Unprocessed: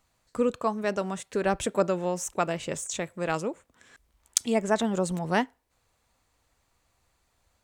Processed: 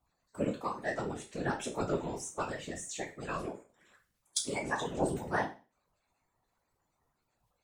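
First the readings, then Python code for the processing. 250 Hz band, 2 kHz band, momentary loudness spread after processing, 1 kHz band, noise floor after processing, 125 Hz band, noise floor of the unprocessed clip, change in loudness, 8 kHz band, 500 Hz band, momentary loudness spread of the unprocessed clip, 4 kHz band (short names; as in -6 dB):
-8.0 dB, -4.0 dB, 6 LU, -6.5 dB, -80 dBFS, -5.5 dB, -73 dBFS, -7.5 dB, -7.5 dB, -9.0 dB, 6 LU, -5.5 dB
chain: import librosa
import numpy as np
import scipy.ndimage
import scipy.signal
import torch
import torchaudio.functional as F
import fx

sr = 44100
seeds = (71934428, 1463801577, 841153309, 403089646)

y = fx.spec_quant(x, sr, step_db=30)
y = fx.resonator_bank(y, sr, root=47, chord='major', decay_s=0.33)
y = fx.whisperise(y, sr, seeds[0])
y = y * librosa.db_to_amplitude(7.5)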